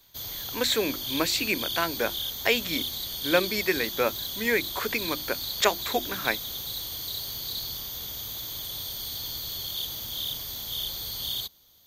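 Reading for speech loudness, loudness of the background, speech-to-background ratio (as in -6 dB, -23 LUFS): -28.0 LUFS, -31.5 LUFS, 3.5 dB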